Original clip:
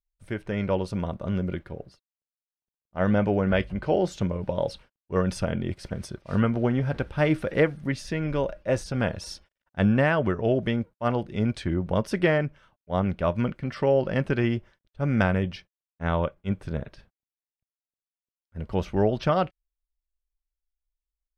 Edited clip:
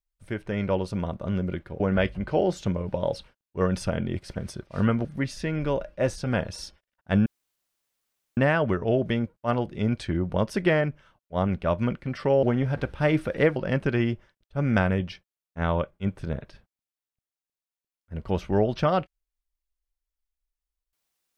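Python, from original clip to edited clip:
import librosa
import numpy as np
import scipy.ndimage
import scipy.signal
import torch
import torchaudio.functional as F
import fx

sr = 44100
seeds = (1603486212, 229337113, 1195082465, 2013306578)

y = fx.edit(x, sr, fx.cut(start_s=1.8, length_s=1.55),
    fx.move(start_s=6.6, length_s=1.13, to_s=14.0),
    fx.insert_room_tone(at_s=9.94, length_s=1.11), tone=tone)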